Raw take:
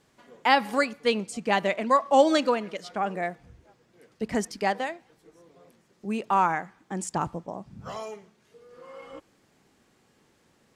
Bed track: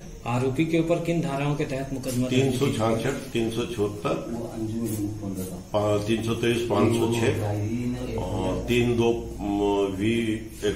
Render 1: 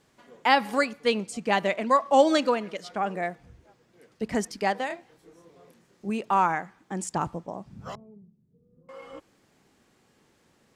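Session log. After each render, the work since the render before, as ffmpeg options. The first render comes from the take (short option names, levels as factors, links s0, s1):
-filter_complex "[0:a]asettb=1/sr,asplit=3[s0][s1][s2];[s0]atrim=end=4.874[s3];[s1]atrim=start=4.87:end=6.1,asetpts=PTS-STARTPTS,afade=t=in:d=0.004:c=qsin,afade=t=out:st=1.226:d=0.004:c=qsin,asplit=2[s4][s5];[s5]adelay=30,volume=0.668[s6];[s4][s6]amix=inputs=2:normalize=0,atrim=end_sample=54243[s7];[s2]atrim=start=6.096[s8];[s3][s7]acrossfade=d=0.004:c1=hsin:c2=qsin[s9];[s9][s8]acrossfade=d=0.004:c1=qsin:c2=hsin,asettb=1/sr,asplit=3[s10][s11][s12];[s10]atrim=end=7.954[s13];[s11]atrim=start=7.95:end=8.89,asetpts=PTS-STARTPTS,afade=t=in:d=0.004:c=qsin,afade=t=out:st=0.936:d=0.004:c=qsin,lowpass=f=170:t=q:w=1.9[s14];[s12]atrim=start=8.886[s15];[s13][s14]acrossfade=d=0.004:c1=hsin:c2=qsin[s16];[s16][s15]acrossfade=d=0.004:c1=qsin:c2=hsin"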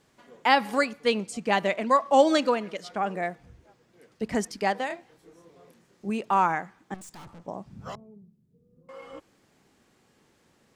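-filter_complex "[0:a]asettb=1/sr,asplit=3[s0][s1][s2];[s0]atrim=end=6.944[s3];[s1]atrim=start=6.94:end=7.45,asetpts=PTS-STARTPTS,afade=t=in:d=0.004:c=qsin,afade=t=out:st=0.506:d=0.004:c=qsin,aeval=exprs='(tanh(158*val(0)+0.4)-tanh(0.4))/158':c=same[s4];[s2]atrim=start=7.446[s5];[s3][s4]acrossfade=d=0.004:c1=hsin:c2=qsin[s6];[s6][s5]acrossfade=d=0.004:c1=qsin:c2=hsin"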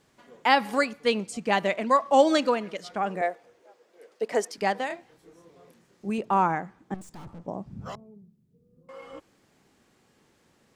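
-filter_complex "[0:a]asettb=1/sr,asplit=3[s0][s1][s2];[s0]atrim=end=3.214[s3];[s1]atrim=start=3.21:end=4.58,asetpts=PTS-STARTPTS,afade=t=in:d=0.004:c=qsin,afade=t=out:st=1.366:d=0.004:c=qsin,highpass=f=480:t=q:w=2.2[s4];[s2]atrim=start=4.576[s5];[s3][s4]acrossfade=d=0.004:c1=hsin:c2=qsin[s6];[s6][s5]acrossfade=d=0.004:c1=qsin:c2=hsin,asettb=1/sr,asplit=3[s7][s8][s9];[s7]atrim=end=6.184[s10];[s8]atrim=start=6.18:end=7.86,asetpts=PTS-STARTPTS,afade=t=in:d=0.004:c=qsin,afade=t=out:st=1.676:d=0.004:c=qsin,tiltshelf=f=840:g=5[s11];[s9]atrim=start=7.856[s12];[s10][s11]acrossfade=d=0.004:c1=hsin:c2=qsin[s13];[s13][s12]acrossfade=d=0.004:c1=qsin:c2=hsin"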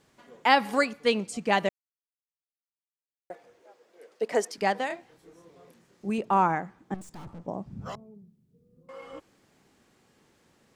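-filter_complex "[0:a]asplit=3[s0][s1][s2];[s0]atrim=end=1.69,asetpts=PTS-STARTPTS,afade=t=out:st=1.686:d=0.004:c=hsin[s3];[s1]atrim=start=1.69:end=3.3,asetpts=PTS-STARTPTS,volume=0[s4];[s2]atrim=start=3.3,asetpts=PTS-STARTPTS,afade=t=in:d=0.004:c=hsin[s5];[s3][s4][s5]concat=n=3:v=0:a=1"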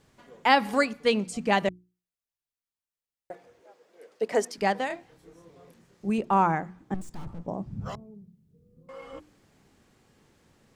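-af "lowshelf=f=130:g=11,bandreject=f=60:t=h:w=6,bandreject=f=120:t=h:w=6,bandreject=f=180:t=h:w=6,bandreject=f=240:t=h:w=6,bandreject=f=300:t=h:w=6,bandreject=f=360:t=h:w=6"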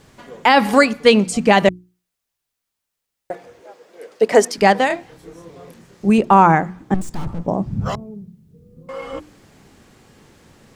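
-af "alimiter=level_in=4.47:limit=0.891:release=50:level=0:latency=1"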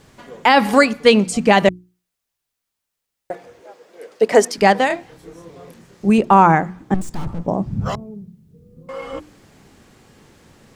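-af anull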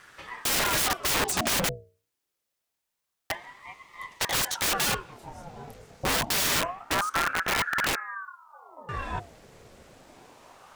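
-af "aeval=exprs='(mod(7.5*val(0)+1,2)-1)/7.5':c=same,aeval=exprs='val(0)*sin(2*PI*920*n/s+920*0.7/0.26*sin(2*PI*0.26*n/s))':c=same"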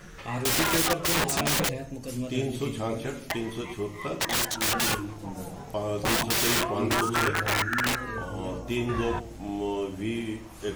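-filter_complex "[1:a]volume=0.447[s0];[0:a][s0]amix=inputs=2:normalize=0"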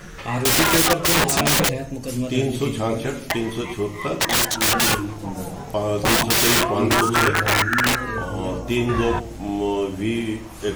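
-af "volume=2.37"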